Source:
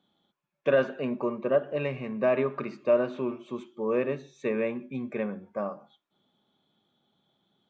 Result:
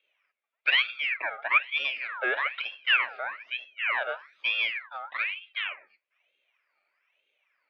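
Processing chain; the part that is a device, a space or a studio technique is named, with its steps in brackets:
voice changer toy (ring modulator whose carrier an LFO sweeps 2,000 Hz, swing 50%, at 1.1 Hz; loudspeaker in its box 550–3,600 Hz, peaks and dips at 580 Hz +6 dB, 840 Hz −6 dB, 2,400 Hz +7 dB)

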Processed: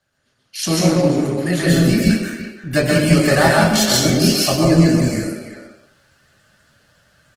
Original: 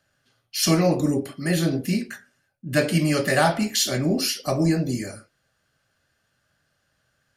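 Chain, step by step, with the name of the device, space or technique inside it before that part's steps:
speakerphone in a meeting room (convolution reverb RT60 0.65 s, pre-delay 118 ms, DRR −2 dB; far-end echo of a speakerphone 340 ms, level −10 dB; automatic gain control gain up to 9.5 dB; Opus 16 kbit/s 48,000 Hz)

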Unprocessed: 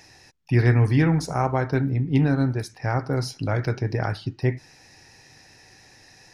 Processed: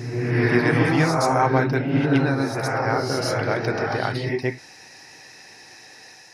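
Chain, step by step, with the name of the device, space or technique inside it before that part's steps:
ghost voice (reversed playback; convolution reverb RT60 1.4 s, pre-delay 111 ms, DRR −1 dB; reversed playback; high-pass filter 480 Hz 6 dB per octave)
level +4.5 dB

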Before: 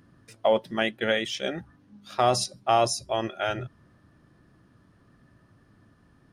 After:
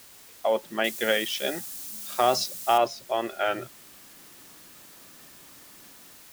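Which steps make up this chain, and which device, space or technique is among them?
dictaphone (band-pass filter 280–3,300 Hz; automatic gain control gain up to 13.5 dB; tape wow and flutter; white noise bed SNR 20 dB)
0:00.84–0:02.78: bass and treble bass +3 dB, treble +13 dB
level −8.5 dB

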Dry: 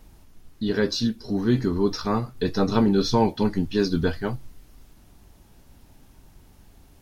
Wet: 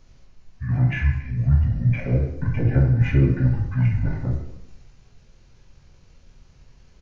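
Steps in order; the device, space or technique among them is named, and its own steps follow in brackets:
monster voice (pitch shifter −9 semitones; formants moved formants −5.5 semitones; low-shelf EQ 230 Hz +3.5 dB; convolution reverb RT60 0.95 s, pre-delay 10 ms, DRR 0 dB)
level −3 dB

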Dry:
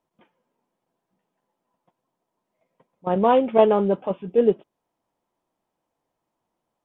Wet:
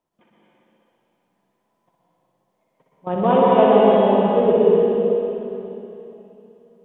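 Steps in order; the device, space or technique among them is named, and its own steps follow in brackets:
tunnel (flutter between parallel walls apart 10.6 metres, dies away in 0.86 s; convolution reverb RT60 3.2 s, pre-delay 114 ms, DRR −4.5 dB)
level −2 dB

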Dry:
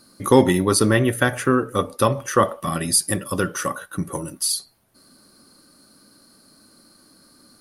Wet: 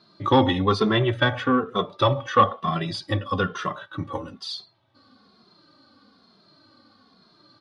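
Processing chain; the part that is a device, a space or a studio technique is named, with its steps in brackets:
barber-pole flanger into a guitar amplifier (barber-pole flanger 2.5 ms −1.1 Hz; soft clipping −10.5 dBFS, distortion −17 dB; loudspeaker in its box 91–4,300 Hz, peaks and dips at 100 Hz +8 dB, 780 Hz +6 dB, 1,100 Hz +6 dB, 3,500 Hz +10 dB)

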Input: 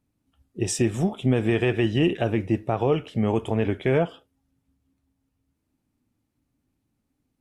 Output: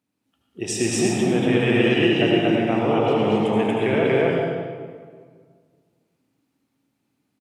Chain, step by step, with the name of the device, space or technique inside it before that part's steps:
stadium PA (high-pass filter 180 Hz 12 dB per octave; parametric band 3,000 Hz +4.5 dB 2.4 octaves; loudspeakers that aren't time-aligned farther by 66 metres −10 dB, 81 metres 0 dB; convolution reverb RT60 1.8 s, pre-delay 70 ms, DRR −1 dB)
level −2.5 dB

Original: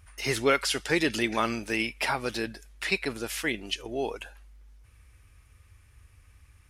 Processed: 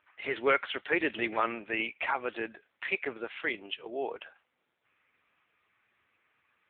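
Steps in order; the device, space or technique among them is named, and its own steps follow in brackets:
telephone (band-pass filter 380–3,200 Hz; AMR narrowband 6.7 kbit/s 8,000 Hz)

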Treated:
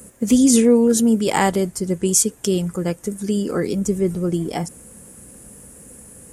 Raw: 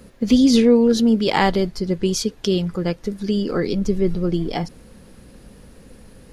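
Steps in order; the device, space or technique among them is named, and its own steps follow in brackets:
budget condenser microphone (high-pass filter 64 Hz 12 dB per octave; high shelf with overshoot 6,000 Hz +12 dB, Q 3)

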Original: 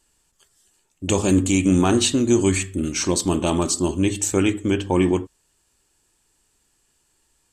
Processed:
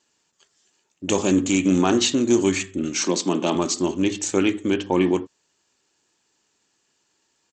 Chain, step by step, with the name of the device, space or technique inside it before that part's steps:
0:02.98–0:03.55: Butterworth high-pass 150 Hz
Bluetooth headset (high-pass filter 180 Hz 12 dB per octave; downsampling to 16,000 Hz; SBC 64 kbit/s 32,000 Hz)

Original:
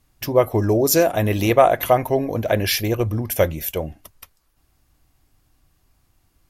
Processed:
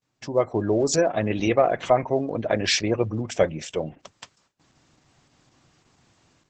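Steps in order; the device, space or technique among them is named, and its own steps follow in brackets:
noise gate with hold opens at −53 dBFS
0:01.33–0:01.87: dynamic equaliser 940 Hz, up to −6 dB, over −25 dBFS, Q 1.4
noise-suppressed video call (high-pass filter 120 Hz 24 dB per octave; gate on every frequency bin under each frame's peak −30 dB strong; automatic gain control gain up to 15.5 dB; level −6.5 dB; Opus 12 kbit/s 48,000 Hz)

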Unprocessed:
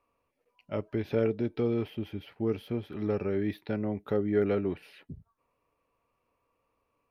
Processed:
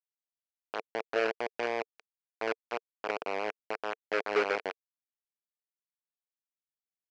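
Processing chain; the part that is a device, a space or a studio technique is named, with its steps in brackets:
hand-held game console (bit reduction 4 bits; loudspeaker in its box 450–4,600 Hz, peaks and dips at 450 Hz +7 dB, 670 Hz +4 dB, 1,500 Hz +4 dB, 2,400 Hz +7 dB, 3,600 Hz −9 dB)
level −4 dB

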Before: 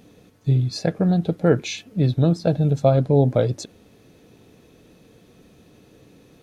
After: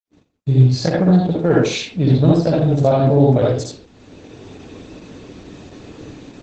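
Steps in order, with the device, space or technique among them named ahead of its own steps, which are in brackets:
speakerphone in a meeting room (convolution reverb RT60 0.45 s, pre-delay 55 ms, DRR −4 dB; automatic gain control gain up to 11.5 dB; noise gate −43 dBFS, range −56 dB; level −1 dB; Opus 12 kbit/s 48,000 Hz)

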